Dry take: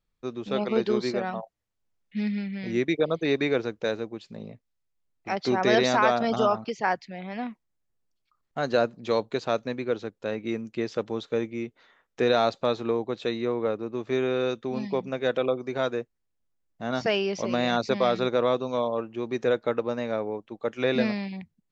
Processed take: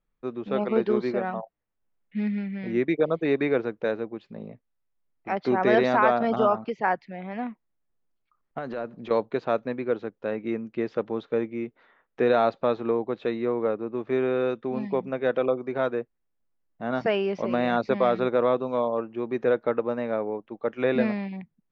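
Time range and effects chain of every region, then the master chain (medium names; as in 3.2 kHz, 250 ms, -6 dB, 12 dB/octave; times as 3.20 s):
8.58–9.11 s: block-companded coder 7-bit + transient shaper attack -9 dB, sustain +3 dB + compression 2.5:1, threshold -32 dBFS
whole clip: low-pass 2.1 kHz 12 dB/octave; peaking EQ 88 Hz -11 dB 0.63 oct; trim +1.5 dB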